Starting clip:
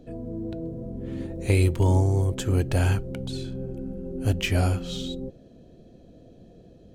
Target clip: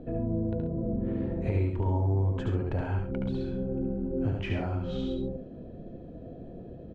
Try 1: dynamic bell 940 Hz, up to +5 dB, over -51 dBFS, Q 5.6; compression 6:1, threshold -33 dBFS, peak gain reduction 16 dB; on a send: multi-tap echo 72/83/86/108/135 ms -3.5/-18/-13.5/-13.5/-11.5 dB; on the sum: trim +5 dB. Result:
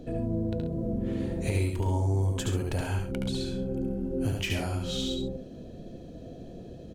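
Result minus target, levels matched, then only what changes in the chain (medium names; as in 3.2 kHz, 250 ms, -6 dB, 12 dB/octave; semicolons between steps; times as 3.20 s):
2 kHz band +4.5 dB
add after dynamic bell: low-pass 1.6 kHz 12 dB/octave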